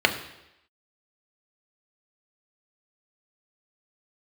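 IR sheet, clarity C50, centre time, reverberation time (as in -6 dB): 11.0 dB, 13 ms, 0.85 s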